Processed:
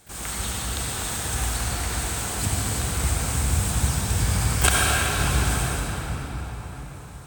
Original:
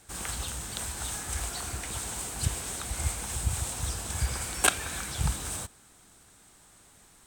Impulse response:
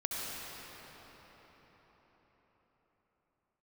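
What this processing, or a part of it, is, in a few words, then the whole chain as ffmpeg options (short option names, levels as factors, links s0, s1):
shimmer-style reverb: -filter_complex "[0:a]asplit=3[s0][s1][s2];[s0]afade=t=out:st=3.75:d=0.02[s3];[s1]equalizer=f=120:t=o:w=1.5:g=6,afade=t=in:st=3.75:d=0.02,afade=t=out:st=4.24:d=0.02[s4];[s2]afade=t=in:st=4.24:d=0.02[s5];[s3][s4][s5]amix=inputs=3:normalize=0,asplit=2[s6][s7];[s7]asetrate=88200,aresample=44100,atempo=0.5,volume=0.398[s8];[s6][s8]amix=inputs=2:normalize=0[s9];[1:a]atrim=start_sample=2205[s10];[s9][s10]afir=irnorm=-1:irlink=0,volume=1.41"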